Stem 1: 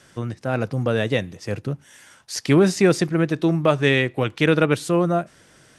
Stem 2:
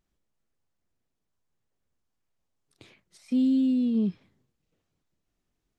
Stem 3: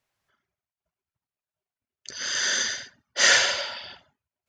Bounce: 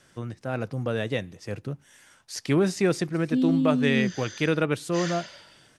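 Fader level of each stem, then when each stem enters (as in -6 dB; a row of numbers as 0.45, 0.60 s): -6.5, -0.5, -18.0 dB; 0.00, 0.00, 1.75 s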